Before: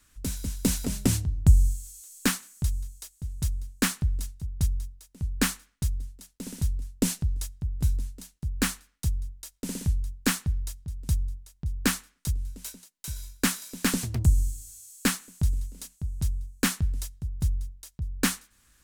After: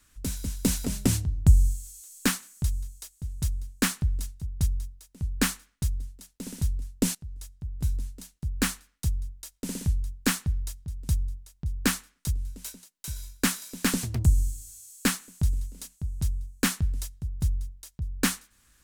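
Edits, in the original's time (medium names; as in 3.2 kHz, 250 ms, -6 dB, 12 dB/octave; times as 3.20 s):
7.15–8.17 s: fade in, from -17.5 dB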